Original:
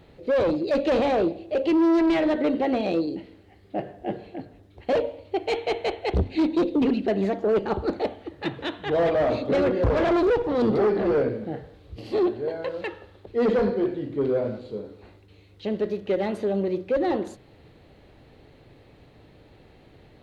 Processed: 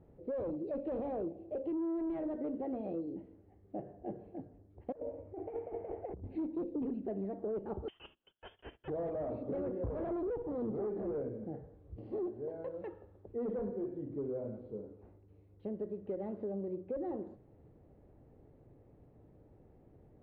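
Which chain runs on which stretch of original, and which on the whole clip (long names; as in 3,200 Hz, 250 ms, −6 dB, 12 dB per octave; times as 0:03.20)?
0:04.92–0:06.24: low-pass filter 2,200 Hz 24 dB per octave + compressor whose output falls as the input rises −29 dBFS, ratio −0.5
0:07.88–0:08.88: noise gate −39 dBFS, range −19 dB + voice inversion scrambler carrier 3,400 Hz
whole clip: Bessel low-pass filter 600 Hz, order 2; downward compressor 2.5 to 1, threshold −30 dBFS; level −7.5 dB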